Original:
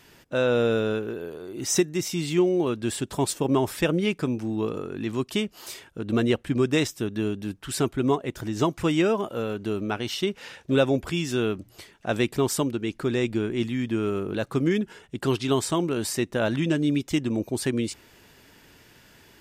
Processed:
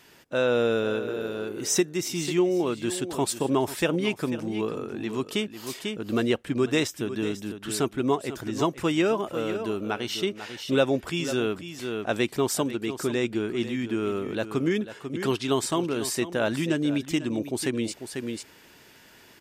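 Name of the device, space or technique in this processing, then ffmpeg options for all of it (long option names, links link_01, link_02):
ducked delay: -filter_complex "[0:a]asplit=3[link_01][link_02][link_03];[link_02]adelay=494,volume=-3.5dB[link_04];[link_03]apad=whole_len=877626[link_05];[link_04][link_05]sidechaincompress=threshold=-32dB:ratio=6:attack=29:release=578[link_06];[link_01][link_06]amix=inputs=2:normalize=0,lowshelf=frequency=130:gain=-10.5"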